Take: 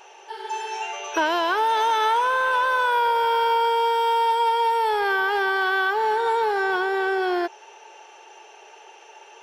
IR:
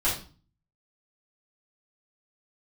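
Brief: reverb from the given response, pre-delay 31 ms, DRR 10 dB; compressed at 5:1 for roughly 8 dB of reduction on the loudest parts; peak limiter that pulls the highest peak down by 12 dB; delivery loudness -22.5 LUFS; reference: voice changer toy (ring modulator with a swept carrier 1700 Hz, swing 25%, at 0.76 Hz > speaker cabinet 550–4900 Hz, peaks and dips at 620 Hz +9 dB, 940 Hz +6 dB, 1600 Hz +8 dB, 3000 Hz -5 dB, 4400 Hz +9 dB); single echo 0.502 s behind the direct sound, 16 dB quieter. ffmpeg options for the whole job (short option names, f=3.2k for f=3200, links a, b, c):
-filter_complex "[0:a]acompressor=threshold=-27dB:ratio=5,alimiter=level_in=5.5dB:limit=-24dB:level=0:latency=1,volume=-5.5dB,aecho=1:1:502:0.158,asplit=2[a][b];[1:a]atrim=start_sample=2205,adelay=31[c];[b][c]afir=irnorm=-1:irlink=0,volume=-21dB[d];[a][d]amix=inputs=2:normalize=0,aeval=exprs='val(0)*sin(2*PI*1700*n/s+1700*0.25/0.76*sin(2*PI*0.76*n/s))':c=same,highpass=550,equalizer=f=620:t=q:w=4:g=9,equalizer=f=940:t=q:w=4:g=6,equalizer=f=1.6k:t=q:w=4:g=8,equalizer=f=3k:t=q:w=4:g=-5,equalizer=f=4.4k:t=q:w=4:g=9,lowpass=f=4.9k:w=0.5412,lowpass=f=4.9k:w=1.3066,volume=13.5dB"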